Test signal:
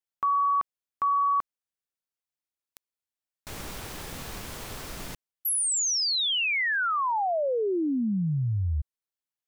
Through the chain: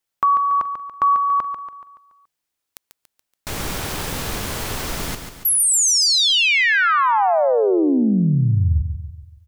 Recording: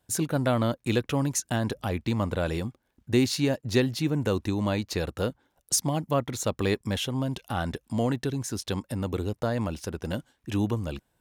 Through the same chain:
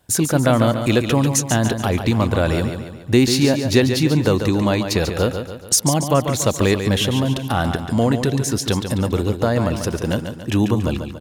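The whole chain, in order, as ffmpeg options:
-filter_complex "[0:a]asplit=2[s0][s1];[s1]acompressor=threshold=0.0224:ratio=6:attack=34:release=134,volume=0.794[s2];[s0][s2]amix=inputs=2:normalize=0,aecho=1:1:142|284|426|568|710|852:0.398|0.191|0.0917|0.044|0.0211|0.0101,volume=2.11"

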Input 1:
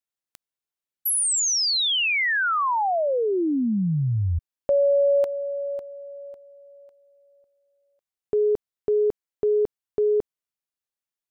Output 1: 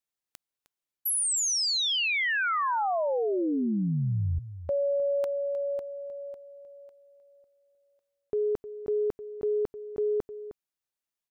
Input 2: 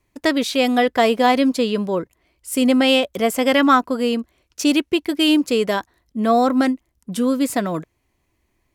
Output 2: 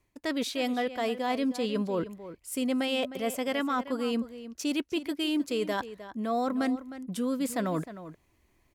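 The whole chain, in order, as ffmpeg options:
-filter_complex "[0:a]areverse,acompressor=threshold=0.0562:ratio=6:attack=2.1:release=609:knee=6:detection=peak,areverse,asplit=2[s0][s1];[s1]adelay=309,volume=0.224,highshelf=f=4000:g=-6.95[s2];[s0][s2]amix=inputs=2:normalize=0"

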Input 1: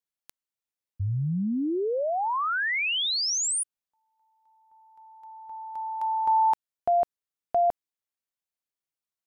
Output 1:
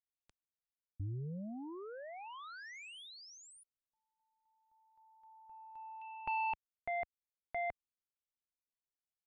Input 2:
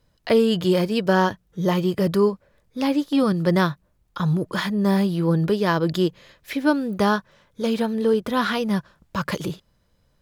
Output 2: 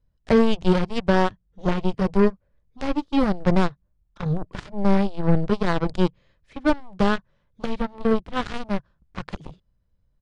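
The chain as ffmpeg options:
-af "aeval=exprs='0.473*(cos(1*acos(clip(val(0)/0.473,-1,1)))-cos(1*PI/2))+0.0841*(cos(7*acos(clip(val(0)/0.473,-1,1)))-cos(7*PI/2))':c=same,aresample=22050,aresample=44100,aemphasis=mode=reproduction:type=bsi,volume=0.708"

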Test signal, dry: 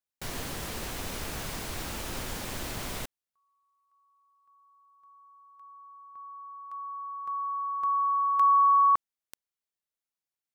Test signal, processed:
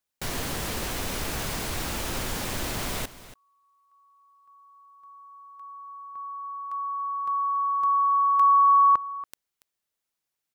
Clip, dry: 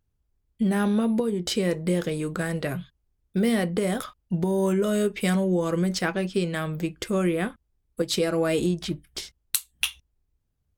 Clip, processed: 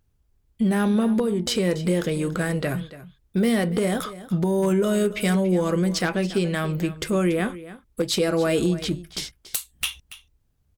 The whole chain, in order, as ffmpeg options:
-filter_complex "[0:a]asplit=2[s0][s1];[s1]acompressor=threshold=0.0251:ratio=10:attack=0.17:release=28:knee=6,volume=1.26[s2];[s0][s2]amix=inputs=2:normalize=0,aeval=exprs='0.211*(abs(mod(val(0)/0.211+3,4)-2)-1)':c=same,aecho=1:1:283:0.158"

